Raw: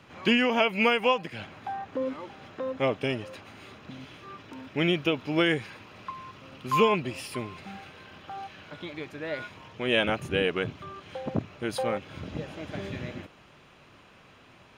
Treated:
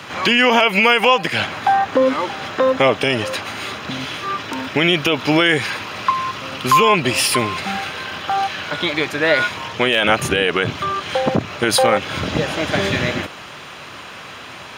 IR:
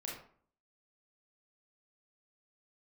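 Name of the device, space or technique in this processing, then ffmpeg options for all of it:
mastering chain: -af "highpass=f=58:w=0.5412,highpass=f=58:w=1.3066,equalizer=f=2.5k:t=o:w=0.5:g=-3,acompressor=threshold=-27dB:ratio=2.5,tiltshelf=f=640:g=-5.5,asoftclip=type=hard:threshold=-14.5dB,alimiter=level_in=22dB:limit=-1dB:release=50:level=0:latency=1,volume=-3.5dB"

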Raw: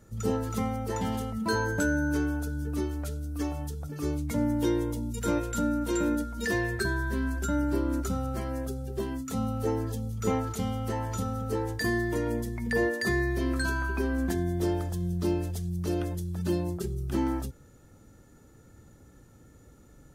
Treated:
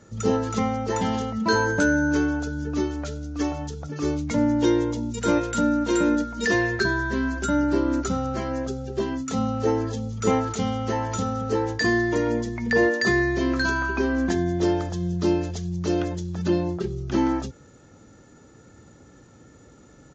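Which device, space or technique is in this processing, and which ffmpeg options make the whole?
Bluetooth headset: -filter_complex "[0:a]asettb=1/sr,asplit=3[a][b][c];[a]atrim=end=16.484[d];[b]atrim=start=16.48:end=17.03,asetpts=PTS-STARTPTS,afade=t=in:d=0.004:c=qsin,afade=t=out:st=0.546:d=0.004:c=qsin,acrossover=split=4100[e][f];[f]acompressor=threshold=-58dB:ratio=4:attack=1:release=60[g];[e][g]amix=inputs=2:normalize=0[h];[c]atrim=start=17.026[i];[d][h]acrossfade=d=0.004:c1=hsin:c2=qsin[j];[j][i]acrossfade=d=0.004:c1=qsin:c2=hsin,highpass=f=160:p=1,aresample=16000,aresample=44100,volume=7.5dB" -ar 16000 -c:a sbc -b:a 64k

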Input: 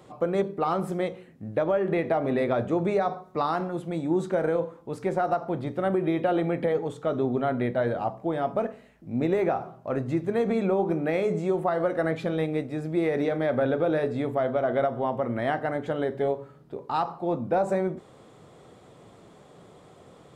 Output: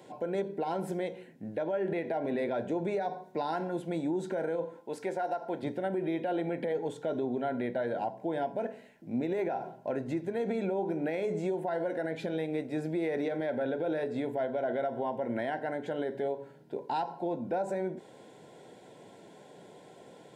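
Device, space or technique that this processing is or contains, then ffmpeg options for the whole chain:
PA system with an anti-feedback notch: -filter_complex "[0:a]asettb=1/sr,asplit=3[a][b][c];[a]atrim=end=4.804[d];[b]atrim=start=4.8:end=5.63,asetpts=PTS-STARTPTS,afade=t=in:d=0.004:c=qsin,afade=t=out:st=0.826:d=0.004:c=qsin,highpass=f=420:p=1[e];[c]atrim=start=5.626[f];[d][e]acrossfade=d=0.004:c1=hsin:c2=qsin[g];[g][f]acrossfade=d=0.004:c1=qsin:c2=hsin,highpass=190,asuperstop=centerf=1200:order=12:qfactor=4.4,alimiter=limit=-23.5dB:level=0:latency=1:release=184"

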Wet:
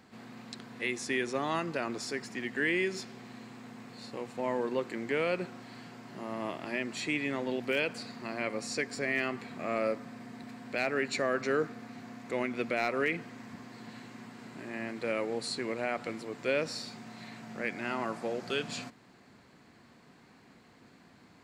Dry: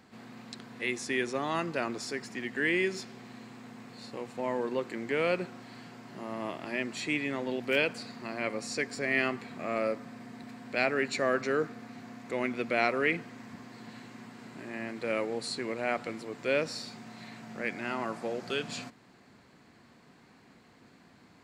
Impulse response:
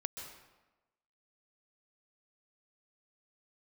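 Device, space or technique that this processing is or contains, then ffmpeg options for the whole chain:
clipper into limiter: -af "asoftclip=type=hard:threshold=-15.5dB,alimiter=limit=-19dB:level=0:latency=1:release=126"

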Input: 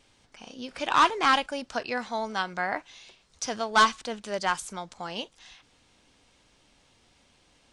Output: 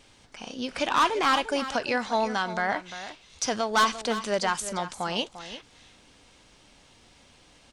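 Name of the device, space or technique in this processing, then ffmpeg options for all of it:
soft clipper into limiter: -af "asoftclip=type=tanh:threshold=-15.5dB,alimiter=limit=-22dB:level=0:latency=1:release=117,aecho=1:1:347:0.237,volume=6dB"

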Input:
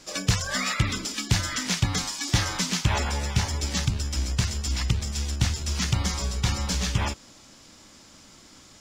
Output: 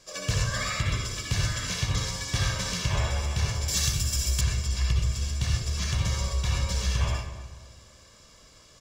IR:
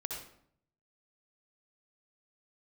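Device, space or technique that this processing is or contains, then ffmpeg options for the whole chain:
microphone above a desk: -filter_complex "[0:a]aecho=1:1:1.8:0.57[a];[1:a]atrim=start_sample=2205[b];[a][b]afir=irnorm=-1:irlink=0,asettb=1/sr,asplit=3[c][d][e];[c]atrim=end=3.684[f];[d]atrim=start=3.68:end=4.41,asetpts=PTS-STARTPTS,afade=t=in:d=0.004:c=qsin,afade=t=out:st=0.726:d=0.004:c=qsin,aemphasis=mode=production:type=75fm[g];[e]atrim=start=4.406[h];[f][g]acrossfade=d=0.004:c1=hsin:c2=qsin[i];[i][h]acrossfade=d=0.004:c1=qsin:c2=hsin,asplit=2[j][k];[k]adelay=250,lowpass=f=2k:p=1,volume=-12.5dB,asplit=2[l][m];[m]adelay=250,lowpass=f=2k:p=1,volume=0.39,asplit=2[n][o];[o]adelay=250,lowpass=f=2k:p=1,volume=0.39,asplit=2[p][q];[q]adelay=250,lowpass=f=2k:p=1,volume=0.39[r];[j][l][n][p][r]amix=inputs=5:normalize=0,volume=-5dB"

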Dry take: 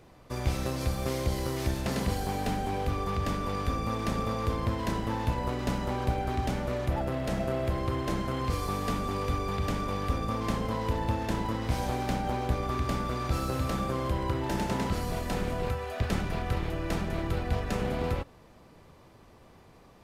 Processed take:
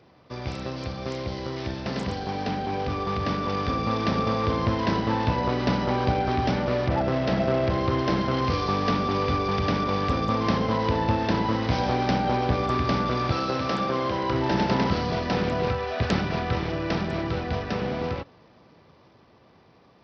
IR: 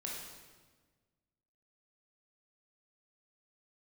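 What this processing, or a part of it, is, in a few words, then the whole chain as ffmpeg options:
Bluetooth headset: -filter_complex "[0:a]asettb=1/sr,asplit=3[a][b][c];[a]atrim=end=13.314[d];[b]atrim=start=13.31:end=14.32,asetpts=PTS-STARTPTS,afade=t=in:d=0.004:c=qsin,afade=t=out:st=1.006:d=0.004:c=qsin,highpass=f=260:p=1[e];[c]atrim=start=14.316[f];[d][e]acrossfade=d=0.004:c1=hsin:c2=qsin[g];[g][f]acrossfade=d=0.004:c1=qsin:c2=hsin,highpass=100,dynaudnorm=f=360:g=17:m=7.5dB,aresample=16000,aresample=44100" -ar 44100 -c:a sbc -b:a 64k

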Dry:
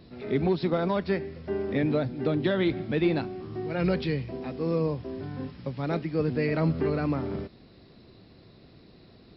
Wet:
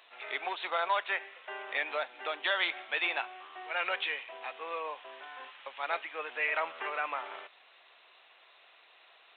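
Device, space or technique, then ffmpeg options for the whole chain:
musical greeting card: -af "aresample=8000,aresample=44100,highpass=f=810:w=0.5412,highpass=f=810:w=1.3066,equalizer=f=2.8k:t=o:w=0.52:g=4.5,volume=4.5dB"

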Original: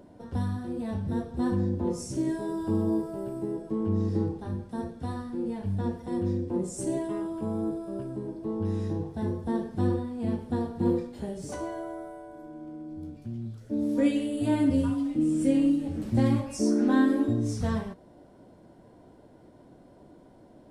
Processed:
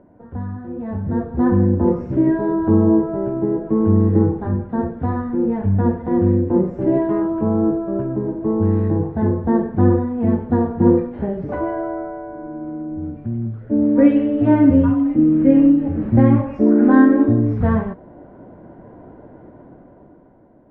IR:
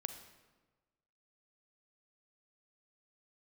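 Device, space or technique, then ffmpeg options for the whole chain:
action camera in a waterproof case: -af "lowpass=f=1.9k:w=0.5412,lowpass=f=1.9k:w=1.3066,dynaudnorm=f=210:g=11:m=11.5dB,volume=1.5dB" -ar 22050 -c:a aac -b:a 48k

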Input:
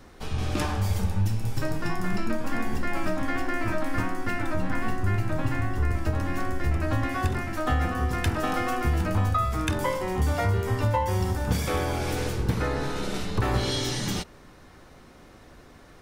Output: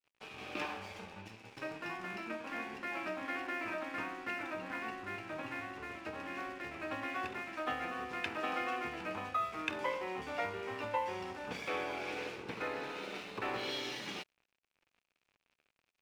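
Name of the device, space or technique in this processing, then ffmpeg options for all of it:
pocket radio on a weak battery: -af "highpass=340,lowpass=4k,aeval=exprs='sgn(val(0))*max(abs(val(0))-0.00422,0)':c=same,equalizer=f=2.5k:t=o:w=0.42:g=9,volume=-8dB"

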